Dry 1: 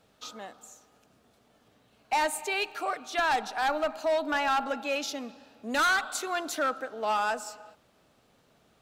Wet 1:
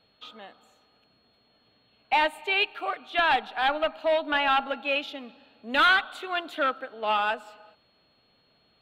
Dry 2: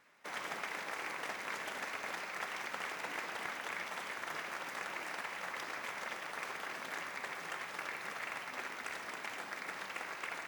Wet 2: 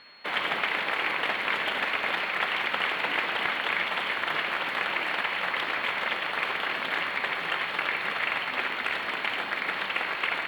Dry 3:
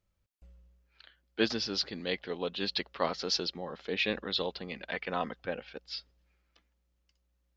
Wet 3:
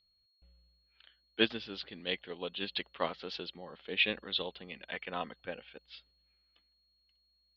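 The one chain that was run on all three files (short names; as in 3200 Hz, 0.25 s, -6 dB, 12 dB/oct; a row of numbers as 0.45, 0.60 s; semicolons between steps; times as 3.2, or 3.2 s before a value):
whine 4300 Hz -59 dBFS; resonant high shelf 4400 Hz -11 dB, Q 3; upward expander 1.5:1, over -36 dBFS; normalise peaks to -12 dBFS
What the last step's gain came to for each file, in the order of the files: +3.5, +11.0, -1.0 dB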